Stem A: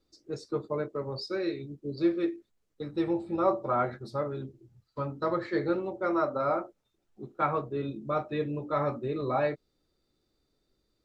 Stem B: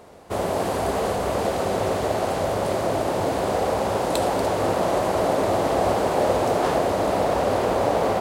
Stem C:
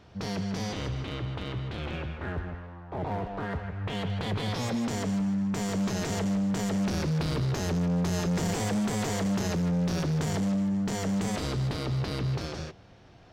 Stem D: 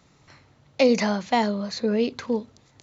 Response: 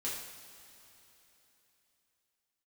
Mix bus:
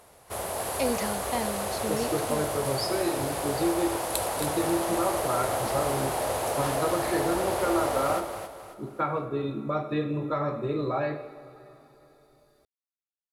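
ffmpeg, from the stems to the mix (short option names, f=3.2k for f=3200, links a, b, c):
-filter_complex "[0:a]acompressor=threshold=-31dB:ratio=4,adelay=1600,volume=2dB,asplit=2[a][b];[b]volume=-4dB[c];[1:a]equalizer=f=230:w=0.54:g=-11.5,volume=-4.5dB,asplit=2[d][e];[e]volume=-7dB[f];[3:a]volume=-10dB[g];[4:a]atrim=start_sample=2205[h];[c][h]afir=irnorm=-1:irlink=0[i];[f]aecho=0:1:270|540|810|1080|1350:1|0.38|0.144|0.0549|0.0209[j];[a][d][g][i][j]amix=inputs=5:normalize=0,equalizer=f=11k:w=1.6:g=14.5"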